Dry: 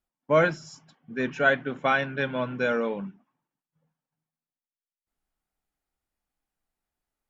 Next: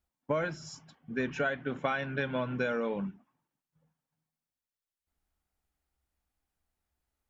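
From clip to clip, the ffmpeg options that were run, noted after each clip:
-af "equalizer=f=71:t=o:w=0.73:g=13,acompressor=threshold=0.0447:ratio=12"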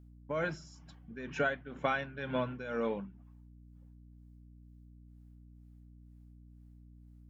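-af "tremolo=f=2.1:d=0.78,aeval=exprs='val(0)+0.002*(sin(2*PI*60*n/s)+sin(2*PI*2*60*n/s)/2+sin(2*PI*3*60*n/s)/3+sin(2*PI*4*60*n/s)/4+sin(2*PI*5*60*n/s)/5)':c=same"

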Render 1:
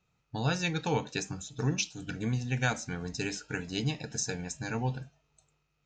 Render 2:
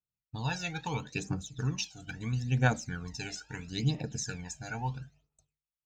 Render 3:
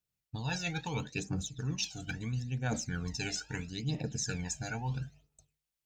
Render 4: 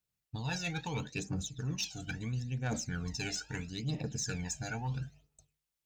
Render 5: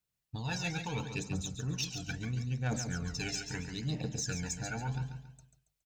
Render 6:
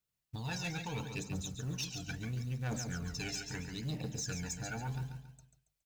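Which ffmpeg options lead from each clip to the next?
-af "agate=range=0.0224:threshold=0.00112:ratio=3:detection=peak,aphaser=in_gain=1:out_gain=1:delay=1.5:decay=0.72:speed=0.75:type=triangular,volume=0.531"
-af "equalizer=f=1100:w=1.4:g=-4.5,areverse,acompressor=threshold=0.0126:ratio=6,areverse,volume=2"
-af "asoftclip=type=tanh:threshold=0.0501"
-af "aecho=1:1:139|278|417|556:0.398|0.139|0.0488|0.0171"
-af "acrusher=bits=6:mode=log:mix=0:aa=0.000001,asoftclip=type=tanh:threshold=0.0355,volume=0.841"

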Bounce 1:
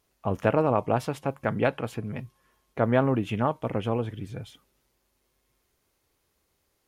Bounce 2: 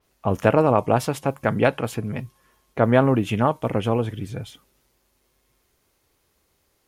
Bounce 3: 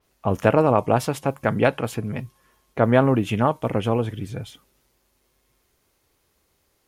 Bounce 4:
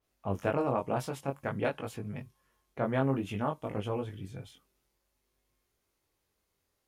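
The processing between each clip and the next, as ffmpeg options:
-af "adynamicequalizer=threshold=0.00398:dfrequency=4700:dqfactor=0.7:tfrequency=4700:tqfactor=0.7:attack=5:release=100:ratio=0.375:range=3:mode=boostabove:tftype=highshelf,volume=1.88"
-af anull
-af "flanger=delay=19.5:depth=3.3:speed=0.53,volume=0.355"

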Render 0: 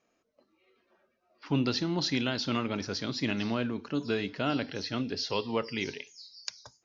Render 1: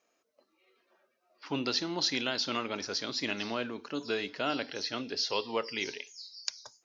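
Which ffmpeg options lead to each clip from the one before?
-af "bass=f=250:g=-14,treble=f=4000:g=4"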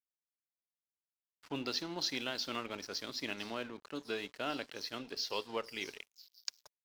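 -af "aeval=exprs='sgn(val(0))*max(abs(val(0))-0.00447,0)':c=same,volume=0.562"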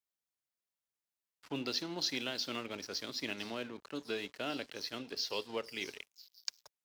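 -filter_complex "[0:a]highpass=47,acrossover=split=800|1500[s0][s1][s2];[s1]acompressor=threshold=0.00158:ratio=6[s3];[s0][s3][s2]amix=inputs=3:normalize=0,volume=1.12"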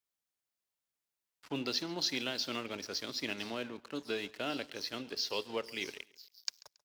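-af "aecho=1:1:138|276:0.0794|0.0254,volume=1.19"

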